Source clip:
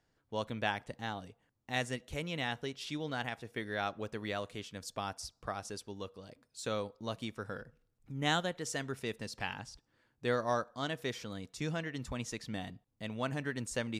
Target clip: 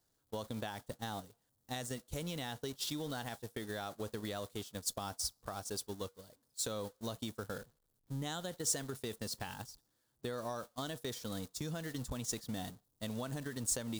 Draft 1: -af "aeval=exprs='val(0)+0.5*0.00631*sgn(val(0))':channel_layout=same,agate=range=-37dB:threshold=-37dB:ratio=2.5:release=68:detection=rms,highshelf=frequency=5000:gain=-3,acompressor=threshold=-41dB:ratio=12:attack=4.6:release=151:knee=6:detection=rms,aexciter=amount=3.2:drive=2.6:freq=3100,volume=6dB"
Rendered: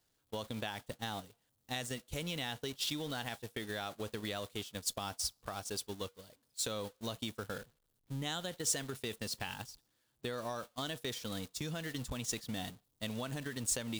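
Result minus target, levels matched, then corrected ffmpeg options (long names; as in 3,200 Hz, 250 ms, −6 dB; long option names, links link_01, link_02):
2,000 Hz band +3.0 dB
-af "aeval=exprs='val(0)+0.5*0.00631*sgn(val(0))':channel_layout=same,agate=range=-37dB:threshold=-37dB:ratio=2.5:release=68:detection=rms,highshelf=frequency=5000:gain=-3,acompressor=threshold=-41dB:ratio=12:attack=4.6:release=151:knee=6:detection=rms,equalizer=frequency=2600:width=1.3:gain=-8,aexciter=amount=3.2:drive=2.6:freq=3100,volume=6dB"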